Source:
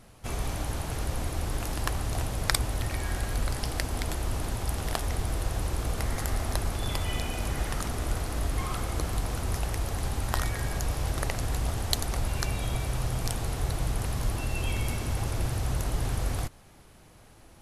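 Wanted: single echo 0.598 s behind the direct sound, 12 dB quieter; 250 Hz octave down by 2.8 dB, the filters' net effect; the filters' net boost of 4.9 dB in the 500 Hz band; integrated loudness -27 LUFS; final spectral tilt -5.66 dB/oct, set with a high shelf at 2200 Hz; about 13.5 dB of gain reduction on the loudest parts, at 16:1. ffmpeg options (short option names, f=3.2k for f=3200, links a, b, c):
-af "equalizer=f=250:t=o:g=-7,equalizer=f=500:t=o:g=8.5,highshelf=f=2.2k:g=-8,acompressor=threshold=-37dB:ratio=16,aecho=1:1:598:0.251,volume=16.5dB"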